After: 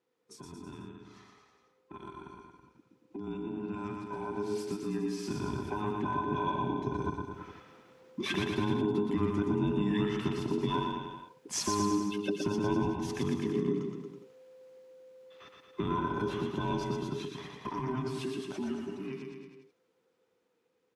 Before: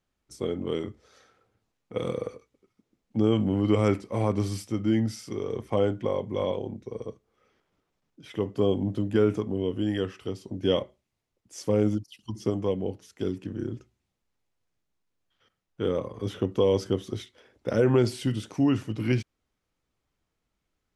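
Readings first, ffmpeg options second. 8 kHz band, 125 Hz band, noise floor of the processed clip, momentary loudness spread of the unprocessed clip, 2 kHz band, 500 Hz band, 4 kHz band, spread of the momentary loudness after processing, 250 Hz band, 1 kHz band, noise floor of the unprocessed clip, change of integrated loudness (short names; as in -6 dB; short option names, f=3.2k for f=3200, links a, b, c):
+3.5 dB, -7.0 dB, -75 dBFS, 13 LU, -0.5 dB, -8.0 dB, -2.5 dB, 18 LU, -4.5 dB, +3.5 dB, -81 dBFS, -5.5 dB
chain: -af "afftfilt=real='real(if(between(b,1,1008),(2*floor((b-1)/24)+1)*24-b,b),0)':imag='imag(if(between(b,1,1008),(2*floor((b-1)/24)+1)*24-b,b),0)*if(between(b,1,1008),-1,1)':win_size=2048:overlap=0.75,highpass=140,highshelf=f=4.8k:g=-8,acompressor=threshold=-43dB:ratio=2.5,alimiter=level_in=13dB:limit=-24dB:level=0:latency=1:release=316,volume=-13dB,dynaudnorm=f=910:g=11:m=15.5dB,aecho=1:1:120|228|325.2|412.7|491.4:0.631|0.398|0.251|0.158|0.1"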